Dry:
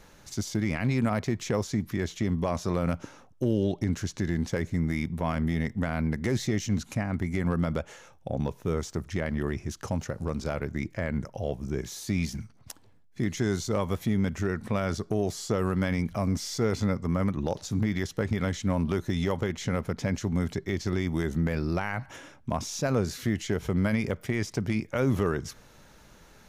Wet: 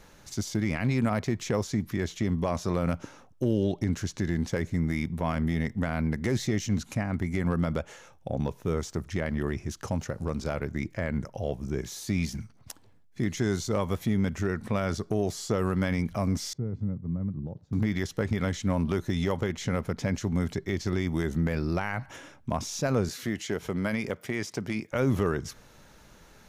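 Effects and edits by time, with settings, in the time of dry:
0:16.53–0:17.73: resonant band-pass 130 Hz, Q 1.5
0:23.09–0:24.92: high-pass filter 240 Hz 6 dB per octave

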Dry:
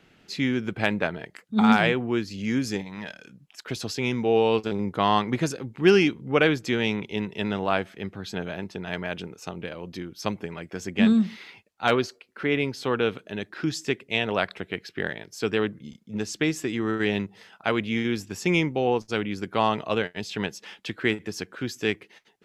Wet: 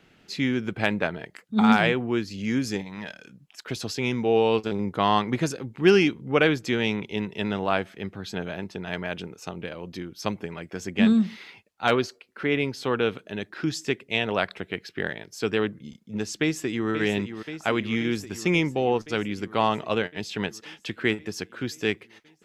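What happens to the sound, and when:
0:16.41–0:16.89: delay throw 530 ms, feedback 75%, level −9.5 dB

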